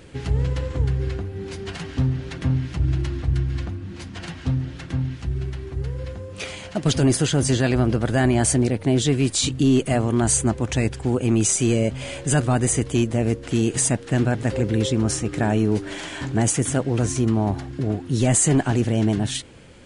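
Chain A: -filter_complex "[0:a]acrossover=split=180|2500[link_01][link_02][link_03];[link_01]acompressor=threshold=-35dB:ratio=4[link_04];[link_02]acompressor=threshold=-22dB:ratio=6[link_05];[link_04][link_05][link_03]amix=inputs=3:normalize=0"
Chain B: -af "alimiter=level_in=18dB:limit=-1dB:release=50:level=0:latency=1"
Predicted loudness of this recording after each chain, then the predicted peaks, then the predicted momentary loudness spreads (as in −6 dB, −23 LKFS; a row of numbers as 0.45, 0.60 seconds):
−26.0, −10.5 LKFS; −8.5, −1.0 dBFS; 12, 5 LU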